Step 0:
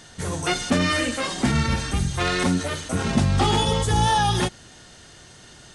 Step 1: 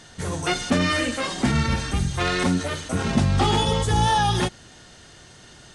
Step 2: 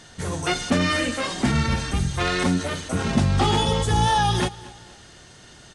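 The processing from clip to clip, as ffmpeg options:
-af "highshelf=f=9.3k:g=-5.5"
-af "aecho=1:1:236|472|708:0.1|0.041|0.0168"

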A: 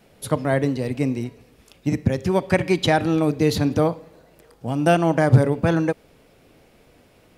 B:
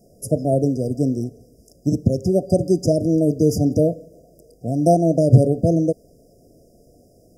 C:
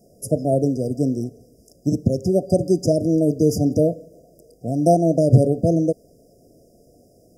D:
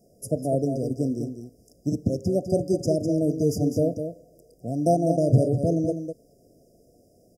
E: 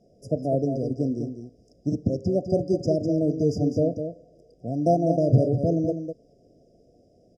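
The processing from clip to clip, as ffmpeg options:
-af "afftfilt=real='re*(1-between(b*sr/4096,740,4800))':imag='im*(1-between(b*sr/4096,740,4800))':win_size=4096:overlap=0.75,volume=2.5dB"
-af "lowshelf=f=83:g=-6"
-af "aecho=1:1:202:0.398,volume=-5.5dB"
-af "lowpass=f=3.6k:t=q:w=2"

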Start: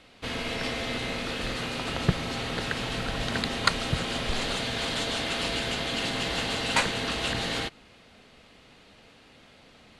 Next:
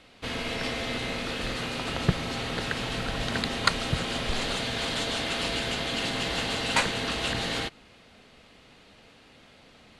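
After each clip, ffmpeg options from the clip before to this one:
-af anull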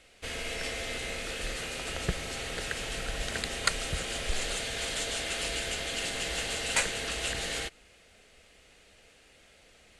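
-af "equalizer=f=125:t=o:w=1:g=-10,equalizer=f=250:t=o:w=1:g=-11,equalizer=f=1k:t=o:w=1:g=-11,equalizer=f=4k:t=o:w=1:g=-7,equalizer=f=8k:t=o:w=1:g=6,volume=1dB"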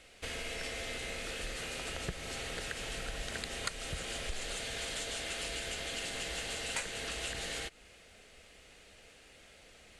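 -af "acompressor=threshold=-40dB:ratio=2.5,volume=1dB"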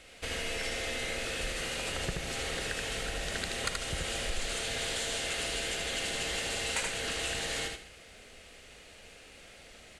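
-filter_complex "[0:a]aecho=1:1:78|148|208:0.631|0.168|0.119,asplit=2[a][b];[b]asoftclip=type=tanh:threshold=-28dB,volume=-6dB[c];[a][c]amix=inputs=2:normalize=0"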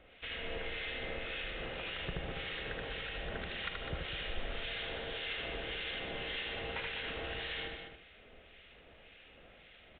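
-filter_complex "[0:a]acrossover=split=1400[a][b];[a]aeval=exprs='val(0)*(1-0.7/2+0.7/2*cos(2*PI*1.8*n/s))':c=same[c];[b]aeval=exprs='val(0)*(1-0.7/2-0.7/2*cos(2*PI*1.8*n/s))':c=same[d];[c][d]amix=inputs=2:normalize=0,asplit=2[e][f];[f]aecho=0:1:202:0.422[g];[e][g]amix=inputs=2:normalize=0,aresample=8000,aresample=44100,volume=-2dB"

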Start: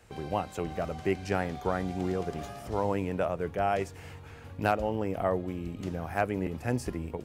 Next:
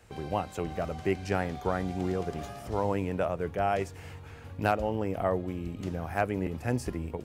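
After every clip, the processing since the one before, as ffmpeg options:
-af "equalizer=f=84:w=1.5:g=2"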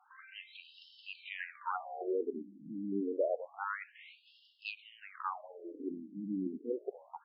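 -af "afftfilt=real='re*between(b*sr/1024,240*pow(3900/240,0.5+0.5*sin(2*PI*0.28*pts/sr))/1.41,240*pow(3900/240,0.5+0.5*sin(2*PI*0.28*pts/sr))*1.41)':imag='im*between(b*sr/1024,240*pow(3900/240,0.5+0.5*sin(2*PI*0.28*pts/sr))/1.41,240*pow(3900/240,0.5+0.5*sin(2*PI*0.28*pts/sr))*1.41)':win_size=1024:overlap=0.75"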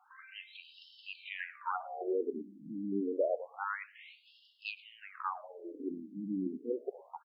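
-af "aecho=1:1:110:0.0794,volume=1dB"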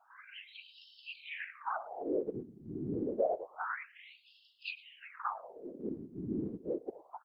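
-af "afftfilt=real='hypot(re,im)*cos(2*PI*random(0))':imag='hypot(re,im)*sin(2*PI*random(1))':win_size=512:overlap=0.75,volume=5.5dB"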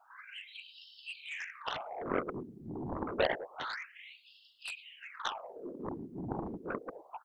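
-af "aeval=exprs='0.1*(cos(1*acos(clip(val(0)/0.1,-1,1)))-cos(1*PI/2))+0.00708*(cos(2*acos(clip(val(0)/0.1,-1,1)))-cos(2*PI/2))+0.000794*(cos(4*acos(clip(val(0)/0.1,-1,1)))-cos(4*PI/2))+0.0355*(cos(7*acos(clip(val(0)/0.1,-1,1)))-cos(7*PI/2))':c=same"

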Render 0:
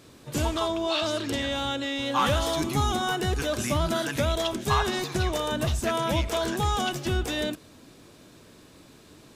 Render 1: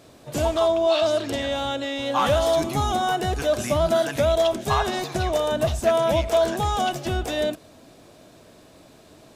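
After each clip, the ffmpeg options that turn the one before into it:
-af "equalizer=f=660:t=o:w=0.54:g=10.5"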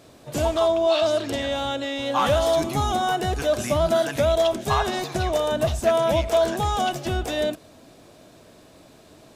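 -af anull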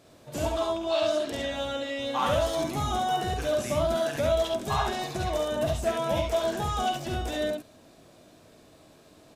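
-af "aecho=1:1:49|69:0.473|0.668,volume=-7dB"

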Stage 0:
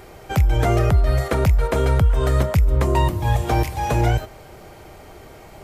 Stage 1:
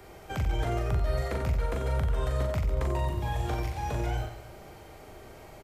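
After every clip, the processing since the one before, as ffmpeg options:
-filter_complex "[0:a]acrossover=split=100|280|7100[a][b][c][d];[a]acompressor=threshold=-21dB:ratio=4[e];[b]acompressor=threshold=-33dB:ratio=4[f];[c]acompressor=threshold=-27dB:ratio=4[g];[d]acompressor=threshold=-52dB:ratio=4[h];[e][f][g][h]amix=inputs=4:normalize=0,aecho=1:1:40|90|152.5|230.6|328.3:0.631|0.398|0.251|0.158|0.1,volume=-8dB"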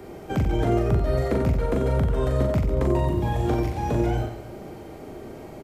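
-af "equalizer=f=260:t=o:w=2.2:g=14,volume=1dB"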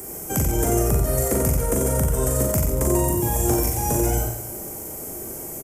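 -filter_complex "[0:a]aexciter=amount=14.3:drive=8.2:freq=6.2k,asplit=2[a][b];[b]aecho=0:1:54|88:0.316|0.398[c];[a][c]amix=inputs=2:normalize=0"

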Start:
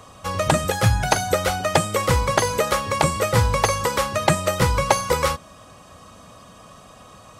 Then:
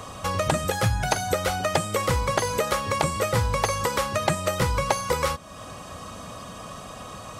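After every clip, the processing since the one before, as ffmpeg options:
-af "acompressor=threshold=-36dB:ratio=2,volume=6.5dB"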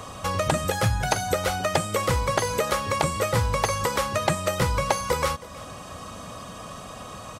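-af "aecho=1:1:319:0.106"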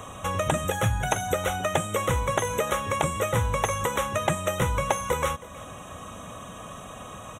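-af "asuperstop=centerf=4700:order=8:qfactor=2.4,volume=-1.5dB"

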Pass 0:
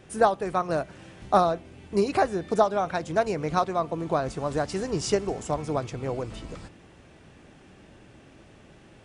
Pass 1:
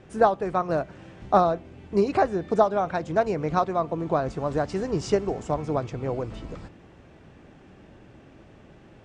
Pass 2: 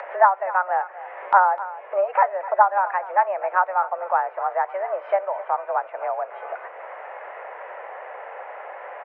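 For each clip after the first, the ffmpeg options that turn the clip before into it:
-af "lowpass=f=8.2k:w=0.5412,lowpass=f=8.2k:w=1.3066,highshelf=f=2.5k:g=-9,volume=2dB"
-af "highpass=f=400:t=q:w=0.5412,highpass=f=400:t=q:w=1.307,lowpass=f=2k:t=q:w=0.5176,lowpass=f=2k:t=q:w=0.7071,lowpass=f=2k:t=q:w=1.932,afreqshift=190,acompressor=mode=upward:threshold=-26dB:ratio=2.5,aecho=1:1:254:0.158,volume=4dB"

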